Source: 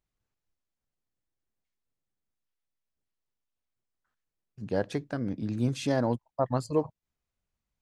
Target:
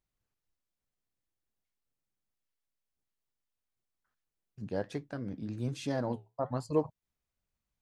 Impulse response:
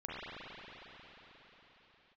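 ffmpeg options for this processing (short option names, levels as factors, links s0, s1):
-filter_complex "[0:a]asplit=3[s0][s1][s2];[s0]afade=t=out:st=4.67:d=0.02[s3];[s1]flanger=delay=6.5:depth=7.7:regen=-70:speed=1.2:shape=triangular,afade=t=in:st=4.67:d=0.02,afade=t=out:st=6.68:d=0.02[s4];[s2]afade=t=in:st=6.68:d=0.02[s5];[s3][s4][s5]amix=inputs=3:normalize=0,volume=0.794"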